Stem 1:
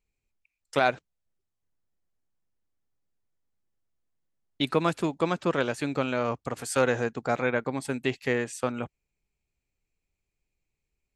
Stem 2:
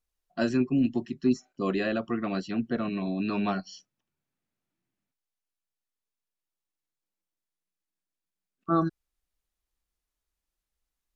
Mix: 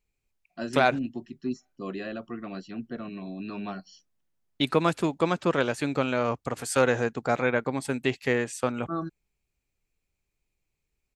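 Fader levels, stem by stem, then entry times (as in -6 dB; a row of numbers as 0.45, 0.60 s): +1.5, -7.0 dB; 0.00, 0.20 s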